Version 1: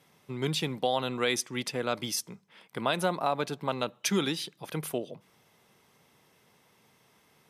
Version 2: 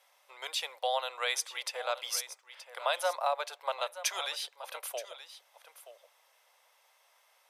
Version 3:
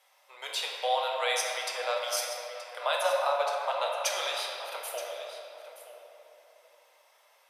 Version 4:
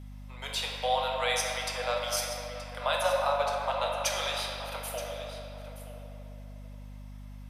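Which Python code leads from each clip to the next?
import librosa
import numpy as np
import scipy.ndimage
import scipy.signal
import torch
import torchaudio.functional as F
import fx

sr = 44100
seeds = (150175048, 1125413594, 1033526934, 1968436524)

y1 = scipy.signal.sosfilt(scipy.signal.cheby1(5, 1.0, 540.0, 'highpass', fs=sr, output='sos'), x)
y1 = y1 + 10.0 ** (-13.5 / 20.0) * np.pad(y1, (int(925 * sr / 1000.0), 0))[:len(y1)]
y1 = F.gain(torch.from_numpy(y1), -1.0).numpy()
y2 = fx.room_shoebox(y1, sr, seeds[0], volume_m3=160.0, walls='hard', distance_m=0.53)
y3 = fx.add_hum(y2, sr, base_hz=50, snr_db=11)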